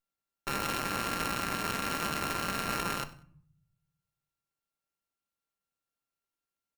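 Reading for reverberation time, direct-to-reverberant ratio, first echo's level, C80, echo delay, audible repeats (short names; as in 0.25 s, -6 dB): 0.55 s, 9.5 dB, -21.5 dB, 18.0 dB, 95 ms, 2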